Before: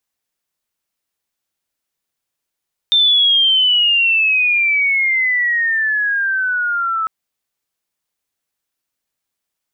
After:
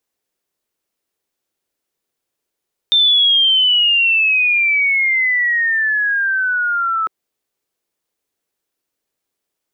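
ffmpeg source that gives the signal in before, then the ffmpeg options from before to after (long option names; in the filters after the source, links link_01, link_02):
-f lavfi -i "aevalsrc='pow(10,(-9-7*t/4.15)/20)*sin(2*PI*3600*4.15/log(1300/3600)*(exp(log(1300/3600)*t/4.15)-1))':duration=4.15:sample_rate=44100"
-af "equalizer=frequency=400:width_type=o:width=1.2:gain=9.5"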